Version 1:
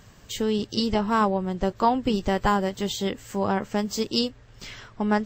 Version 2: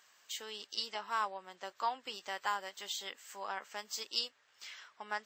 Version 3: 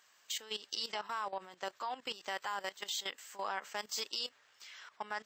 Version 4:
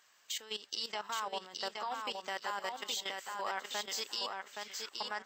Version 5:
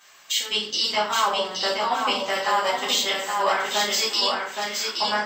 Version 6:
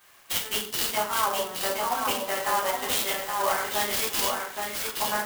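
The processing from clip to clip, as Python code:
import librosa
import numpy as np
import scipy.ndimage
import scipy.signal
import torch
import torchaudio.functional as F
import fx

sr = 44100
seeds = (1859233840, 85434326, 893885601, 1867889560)

y1 = scipy.signal.sosfilt(scipy.signal.butter(2, 1100.0, 'highpass', fs=sr, output='sos'), x)
y1 = F.gain(torch.from_numpy(y1), -7.5).numpy()
y2 = fx.level_steps(y1, sr, step_db=15)
y2 = F.gain(torch.from_numpy(y2), 7.5).numpy()
y3 = fx.echo_feedback(y2, sr, ms=821, feedback_pct=23, wet_db=-4)
y4 = fx.room_shoebox(y3, sr, seeds[0], volume_m3=57.0, walls='mixed', distance_m=1.9)
y4 = F.gain(torch.from_numpy(y4), 7.0).numpy()
y5 = fx.clock_jitter(y4, sr, seeds[1], jitter_ms=0.053)
y5 = F.gain(torch.from_numpy(y5), -3.5).numpy()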